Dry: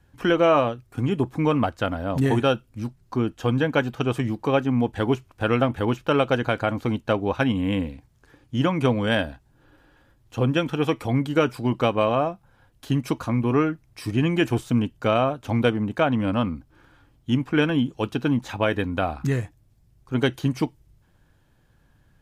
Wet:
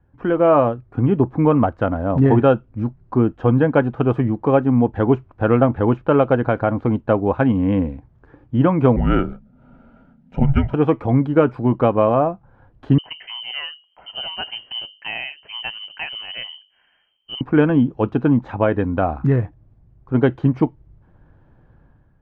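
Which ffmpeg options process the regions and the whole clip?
-filter_complex "[0:a]asettb=1/sr,asplit=3[a][b][c];[a]atrim=end=8.964[d];[b]atrim=start=8.96:end=10.74,asetpts=PTS-STARTPTS,afade=t=in:d=0.004:c=qsin,afade=t=out:st=1.776:d=0.004:c=qsin,bandreject=f=60:t=h:w=6,bandreject=f=120:t=h:w=6,bandreject=f=180:t=h:w=6,bandreject=f=240:t=h:w=6,bandreject=f=300:t=h:w=6,afreqshift=-270,asuperstop=centerf=1100:order=8:qfactor=5[e];[c]atrim=start=10.736[f];[d][e]acrossfade=d=0.004:c1=hsin:c2=qsin[g];[g][f]acrossfade=d=0.004:c1=qsin:c2=hsin,asettb=1/sr,asplit=3[h][i][j];[h]atrim=end=12.984[k];[i]atrim=start=12.98:end=17.41,asetpts=PTS-STARTPTS,afade=t=in:d=0.004:c=qsin,afade=t=out:st=4.426:d=0.004:c=qsin,equalizer=f=2.1k:w=0.4:g=-8.5,bandreject=f=50:t=h:w=6,bandreject=f=100:t=h:w=6,bandreject=f=150:t=h:w=6,bandreject=f=200:t=h:w=6,bandreject=f=250:t=h:w=6,bandreject=f=300:t=h:w=6,bandreject=f=350:t=h:w=6,bandreject=f=400:t=h:w=6,bandreject=f=450:t=h:w=6,lowpass=f=2.7k:t=q:w=0.5098,lowpass=f=2.7k:t=q:w=0.6013,lowpass=f=2.7k:t=q:w=0.9,lowpass=f=2.7k:t=q:w=2.563,afreqshift=-3200[l];[j]atrim=start=17.406[m];[k][l]acrossfade=d=0.004:c1=hsin:c2=qsin[n];[n][m]acrossfade=d=0.004:c1=qsin:c2=hsin,dynaudnorm=f=100:g=9:m=10dB,lowpass=1.2k"

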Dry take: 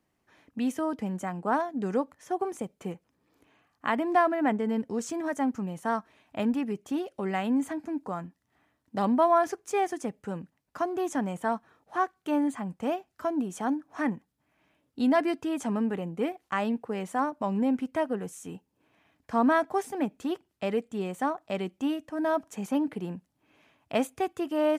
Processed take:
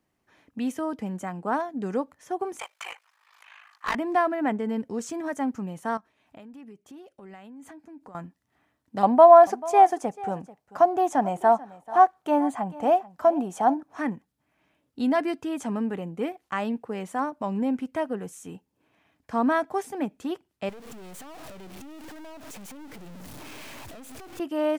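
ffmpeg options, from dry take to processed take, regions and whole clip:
-filter_complex "[0:a]asettb=1/sr,asplit=3[a][b][c];[a]atrim=end=2.594[d];[b]atrim=start=2.59:end=3.95,asetpts=PTS-STARTPTS,afade=t=in:d=0.004:c=qsin,afade=t=out:st=1.356:d=0.004:c=qsin,highpass=f=1k:w=0.5412,highpass=f=1k:w=1.3066,asplit=2[e][f];[f]highpass=f=720:p=1,volume=28dB,asoftclip=type=tanh:threshold=-16dB[g];[e][g]amix=inputs=2:normalize=0,lowpass=f=2.8k:p=1,volume=-6dB,aeval=exprs='val(0)*sin(2*PI*26*n/s)':c=same[h];[c]atrim=start=3.946[i];[d][h]acrossfade=d=0.004:c1=hsin:c2=qsin[j];[j][i]acrossfade=d=0.004:c1=qsin:c2=hsin,asettb=1/sr,asplit=3[k][l][m];[k]atrim=end=5.974[n];[l]atrim=start=5.97:end=8.15,asetpts=PTS-STARTPTS,afade=t=in:d=0.004:c=qsin,afade=t=out:st=2.176:d=0.004:c=qsin,tremolo=f=2.9:d=0.67,acompressor=threshold=-43dB:ratio=6:attack=3.2:release=140:knee=1:detection=peak[o];[m]atrim=start=8.146[p];[n][o]acrossfade=d=0.004:c1=hsin:c2=qsin[q];[q][p]acrossfade=d=0.004:c1=qsin:c2=hsin,asettb=1/sr,asplit=3[r][s][t];[r]atrim=end=9.034[u];[s]atrim=start=9.03:end=13.83,asetpts=PTS-STARTPTS,afade=t=in:d=0.004:c=qsin,afade=t=out:st=4.796:d=0.004:c=qsin,equalizer=f=750:t=o:w=0.81:g=14,aecho=1:1:439:0.112,atrim=end_sample=211680[v];[t]atrim=start=13.826[w];[u][v]acrossfade=d=0.004:c1=hsin:c2=qsin[x];[x][w]acrossfade=d=0.004:c1=qsin:c2=hsin,asettb=1/sr,asplit=3[y][z][aa];[y]atrim=end=20.694[ab];[z]atrim=start=20.69:end=24.4,asetpts=PTS-STARTPTS,afade=t=in:d=0.004:c=qsin,afade=t=out:st=3.706:d=0.004:c=qsin,aeval=exprs='val(0)+0.5*0.0282*sgn(val(0))':c=same,acompressor=threshold=-35dB:ratio=6:attack=3.2:release=140:knee=1:detection=peak,aeval=exprs='(tanh(126*val(0)+0.75)-tanh(0.75))/126':c=same[ac];[aa]atrim=start=24.396[ad];[ab][ac]acrossfade=d=0.004:c1=hsin:c2=qsin[ae];[ae][ad]acrossfade=d=0.004:c1=qsin:c2=hsin"

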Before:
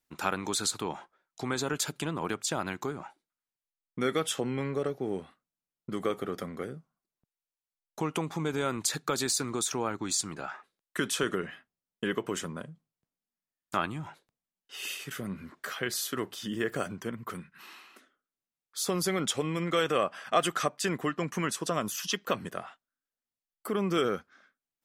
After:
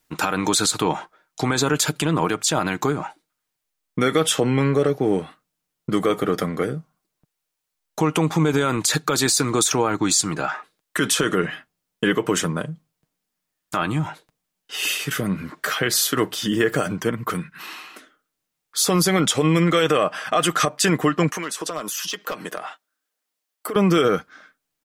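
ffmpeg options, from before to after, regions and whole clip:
-filter_complex "[0:a]asettb=1/sr,asplit=3[a][b][c];[a]atrim=end=21.294[d];[b]atrim=start=21.29:end=23.76,asetpts=PTS-STARTPTS,afade=t=in:d=0.004:c=qsin,afade=t=out:st=2.466:d=0.004:c=qsin,highpass=320,volume=23dB,asoftclip=hard,volume=-23dB,acompressor=threshold=-38dB:ratio=6:attack=3.2:release=140:knee=1:detection=peak[e];[c]atrim=start=23.756[f];[d][e]acrossfade=d=0.004:c1=hsin:c2=qsin[g];[g][f]acrossfade=d=0.004:c1=qsin:c2=hsin,aecho=1:1:6.5:0.33,alimiter=level_in=20.5dB:limit=-1dB:release=50:level=0:latency=1,volume=-7.5dB"

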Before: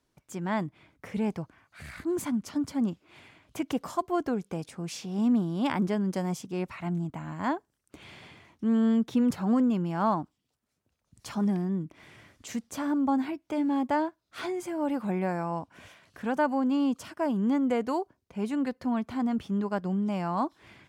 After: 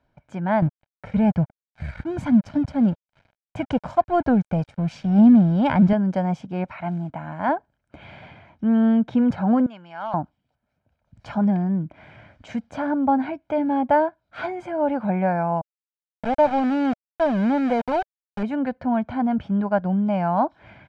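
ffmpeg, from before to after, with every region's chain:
-filter_complex "[0:a]asettb=1/sr,asplit=3[a][b][c];[a]atrim=end=0.624[d];[b]atrim=start=0.62:end=5.93,asetpts=PTS-STARTPTS,afade=t=in:d=0.004:c=qsin,afade=t=out:st=5.306:d=0.004:c=qsin,bass=f=250:g=9,treble=f=4k:g=5,aeval=exprs='sgn(val(0))*max(abs(val(0))-0.00531,0)':c=same,aphaser=in_gain=1:out_gain=1:delay=2.2:decay=0.24:speed=1.1:type=sinusoidal[e];[c]atrim=start=5.926[f];[d][e]acrossfade=d=0.004:c1=hsin:c2=qsin[g];[g][f]acrossfade=d=0.004:c1=qsin:c2=hsin,asettb=1/sr,asplit=3[h][i][j];[h]atrim=end=6.644[k];[i]atrim=start=6.64:end=7.49,asetpts=PTS-STARTPTS,afade=t=in:d=0.004:c=qsin,afade=t=out:st=0.846:d=0.004:c=qsin,acrusher=bits=8:mode=log:mix=0:aa=0.000001,lowshelf=f=170:g=-9[l];[j]atrim=start=7.486[m];[k][l]acrossfade=d=0.004:c1=hsin:c2=qsin[n];[n][m]acrossfade=d=0.004:c1=qsin:c2=hsin,asettb=1/sr,asplit=3[o][p][q];[o]atrim=end=9.664[r];[p]atrim=start=9.66:end=10.14,asetpts=PTS-STARTPTS,afade=t=in:d=0.004:c=qsin,afade=t=out:st=0.476:d=0.004:c=qsin,bandpass=f=4k:t=q:w=0.73,asoftclip=type=hard:threshold=-30.5dB[s];[q]atrim=start=10.136[t];[r][s]acrossfade=d=0.004:c1=hsin:c2=qsin[u];[u][t]acrossfade=d=0.004:c1=qsin:c2=hsin,asettb=1/sr,asplit=3[v][w][x];[v]atrim=end=15.614[y];[w]atrim=start=15.61:end=18.43,asetpts=PTS-STARTPTS,afade=t=in:d=0.004:c=qsin,afade=t=out:st=2.816:d=0.004:c=qsin,equalizer=f=1.5k:w=2:g=-10.5,aeval=exprs='val(0)*gte(abs(val(0)),0.0299)':c=same[z];[x]atrim=start=18.426[aa];[y][z]acrossfade=d=0.004:c1=hsin:c2=qsin[ab];[ab][aa]acrossfade=d=0.004:c1=qsin:c2=hsin,lowpass=2.2k,equalizer=f=610:t=o:w=0.36:g=4.5,aecho=1:1:1.3:0.54,volume=6dB"

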